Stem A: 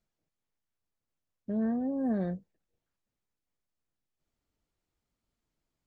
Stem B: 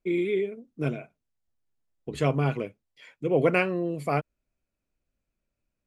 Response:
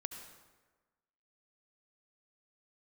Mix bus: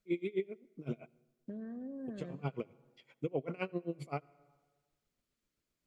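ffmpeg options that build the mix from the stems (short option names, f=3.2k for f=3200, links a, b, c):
-filter_complex "[0:a]highpass=f=230:p=1,equalizer=f=810:w=2.9:g=-13,acompressor=threshold=-42dB:ratio=8,volume=-2dB,asplit=3[a][b][c];[b]volume=-6dB[d];[1:a]lowpass=7k,equalizer=f=1.7k:w=5.7:g=-11.5,aeval=exprs='val(0)*pow(10,-29*(0.5-0.5*cos(2*PI*7.7*n/s))/20)':c=same,volume=-3dB,asplit=2[e][f];[f]volume=-16.5dB[g];[c]apad=whole_len=258496[h];[e][h]sidechaincompress=threshold=-55dB:ratio=8:attack=41:release=330[i];[2:a]atrim=start_sample=2205[j];[d][g]amix=inputs=2:normalize=0[k];[k][j]afir=irnorm=-1:irlink=0[l];[a][i][l]amix=inputs=3:normalize=0,alimiter=limit=-23dB:level=0:latency=1:release=454"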